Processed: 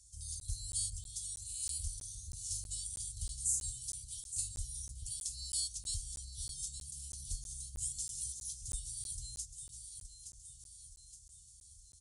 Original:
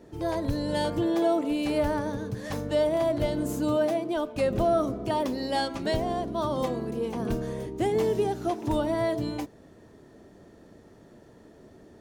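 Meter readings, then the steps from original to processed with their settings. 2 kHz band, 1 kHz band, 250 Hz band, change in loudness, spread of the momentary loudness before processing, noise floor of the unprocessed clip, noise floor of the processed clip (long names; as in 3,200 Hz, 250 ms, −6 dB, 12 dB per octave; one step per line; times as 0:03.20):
below −30 dB, below −40 dB, below −35 dB, −11.5 dB, 7 LU, −53 dBFS, −59 dBFS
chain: inverse Chebyshev band-stop filter 300–1,800 Hz, stop band 80 dB
mains-hum notches 60/120 Hz
on a send: delay that swaps between a low-pass and a high-pass 435 ms, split 870 Hz, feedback 69%, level −7 dB
on the sum: dynamic equaliser 100 Hz, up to +3 dB, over −54 dBFS, Q 1.3
in parallel at −3 dB: downward compressor, threshold −57 dBFS, peak gain reduction 24.5 dB
on the sum: downsampling to 22,050 Hz
meter weighting curve D
regular buffer underruns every 0.32 s, samples 512, zero, from 0:00.40
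level +9.5 dB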